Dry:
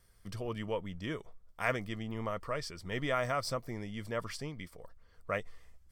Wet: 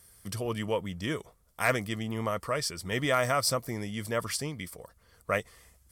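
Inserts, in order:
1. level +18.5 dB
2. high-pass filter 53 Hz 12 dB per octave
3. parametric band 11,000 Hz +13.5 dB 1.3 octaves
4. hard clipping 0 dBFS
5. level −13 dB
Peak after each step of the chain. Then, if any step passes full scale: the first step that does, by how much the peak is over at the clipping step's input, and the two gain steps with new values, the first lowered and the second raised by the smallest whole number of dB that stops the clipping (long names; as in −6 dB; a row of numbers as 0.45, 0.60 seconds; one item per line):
+3.0, +3.5, +4.0, 0.0, −13.0 dBFS
step 1, 4.0 dB
step 1 +14.5 dB, step 5 −9 dB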